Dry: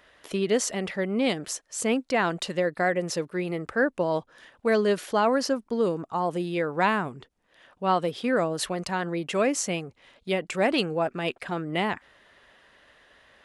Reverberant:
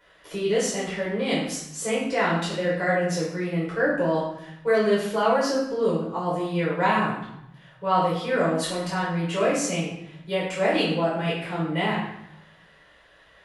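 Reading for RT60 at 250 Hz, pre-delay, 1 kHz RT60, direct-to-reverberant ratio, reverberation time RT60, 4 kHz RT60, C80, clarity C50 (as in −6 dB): 1.1 s, 6 ms, 0.85 s, −7.5 dB, 0.80 s, 0.70 s, 5.5 dB, 2.0 dB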